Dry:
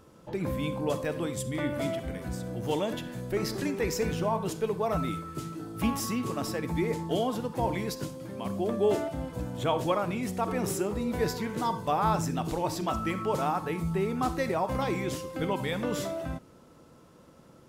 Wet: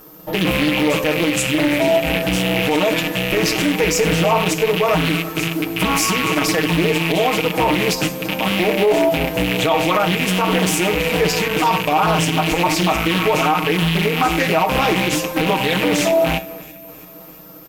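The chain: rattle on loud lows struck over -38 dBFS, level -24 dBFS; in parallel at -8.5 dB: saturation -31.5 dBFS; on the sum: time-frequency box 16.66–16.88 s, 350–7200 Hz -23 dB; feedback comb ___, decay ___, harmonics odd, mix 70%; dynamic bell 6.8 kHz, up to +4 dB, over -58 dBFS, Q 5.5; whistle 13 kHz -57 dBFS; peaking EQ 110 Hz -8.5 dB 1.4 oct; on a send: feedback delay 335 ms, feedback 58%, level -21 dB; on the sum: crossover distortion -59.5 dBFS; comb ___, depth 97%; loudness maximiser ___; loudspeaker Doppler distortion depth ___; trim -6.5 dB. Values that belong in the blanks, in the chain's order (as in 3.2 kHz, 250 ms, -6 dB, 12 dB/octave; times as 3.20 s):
60 Hz, 0.16 s, 6.4 ms, +24.5 dB, 0.41 ms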